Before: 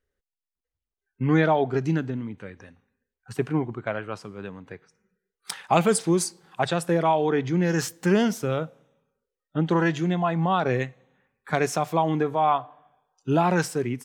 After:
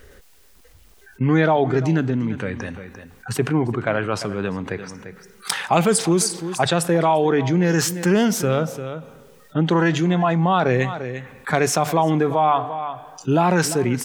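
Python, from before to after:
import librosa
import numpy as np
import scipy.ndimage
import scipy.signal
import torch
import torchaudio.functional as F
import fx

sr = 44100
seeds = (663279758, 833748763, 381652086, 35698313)

p1 = x + fx.echo_single(x, sr, ms=346, db=-20.5, dry=0)
p2 = fx.env_flatten(p1, sr, amount_pct=50)
y = p2 * 10.0 ** (2.0 / 20.0)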